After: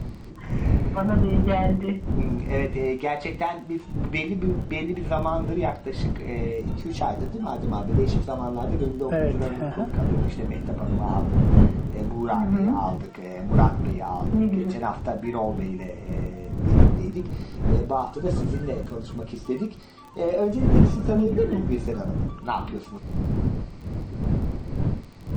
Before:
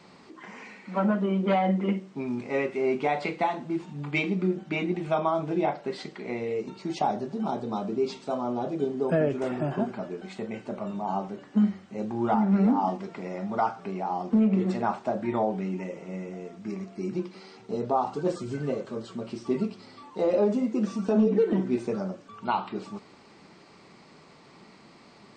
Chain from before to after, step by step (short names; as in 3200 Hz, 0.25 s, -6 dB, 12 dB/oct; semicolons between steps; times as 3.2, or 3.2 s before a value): wind noise 160 Hz -25 dBFS; crackle 27/s -37 dBFS